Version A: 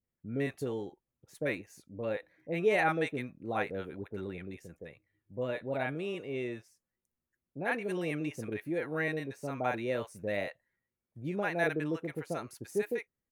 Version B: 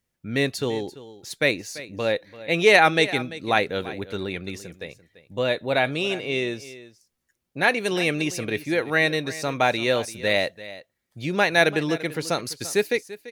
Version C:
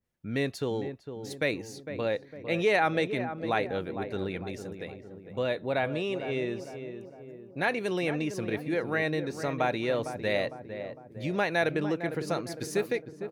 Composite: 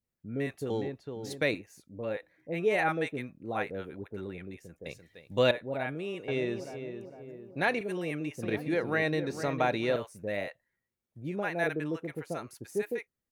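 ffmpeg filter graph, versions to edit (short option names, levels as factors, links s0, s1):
-filter_complex "[2:a]asplit=3[s0][s1][s2];[0:a]asplit=5[s3][s4][s5][s6][s7];[s3]atrim=end=0.702[s8];[s0]atrim=start=0.698:end=1.552[s9];[s4]atrim=start=1.548:end=4.862[s10];[1:a]atrim=start=4.858:end=5.512[s11];[s5]atrim=start=5.508:end=6.282[s12];[s1]atrim=start=6.278:end=7.812[s13];[s6]atrim=start=7.808:end=8.432[s14];[s2]atrim=start=8.428:end=9.962[s15];[s7]atrim=start=9.958[s16];[s8][s9]acrossfade=d=0.004:c1=hsin:c2=hsin[s17];[s17][s10]acrossfade=d=0.004:c1=hsin:c2=hsin[s18];[s18][s11]acrossfade=d=0.004:c1=hsin:c2=hsin[s19];[s19][s12]acrossfade=d=0.004:c1=hsin:c2=hsin[s20];[s20][s13]acrossfade=d=0.004:c1=hsin:c2=hsin[s21];[s21][s14]acrossfade=d=0.004:c1=hsin:c2=hsin[s22];[s22][s15]acrossfade=d=0.004:c1=hsin:c2=hsin[s23];[s23][s16]acrossfade=d=0.004:c1=hsin:c2=hsin"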